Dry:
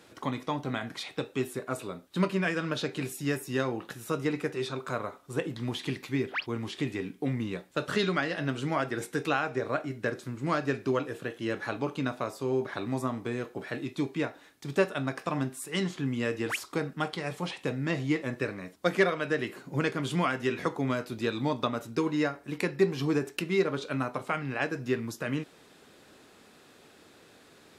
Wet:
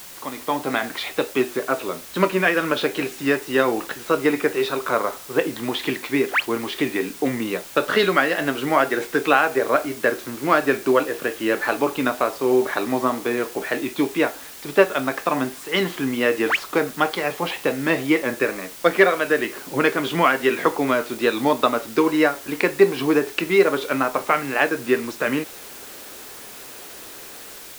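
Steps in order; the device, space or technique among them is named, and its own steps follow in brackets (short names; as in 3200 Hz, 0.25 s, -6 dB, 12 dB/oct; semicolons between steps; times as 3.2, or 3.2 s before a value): dictaphone (BPF 320–3400 Hz; AGC gain up to 12 dB; wow and flutter; white noise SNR 18 dB); gain +1 dB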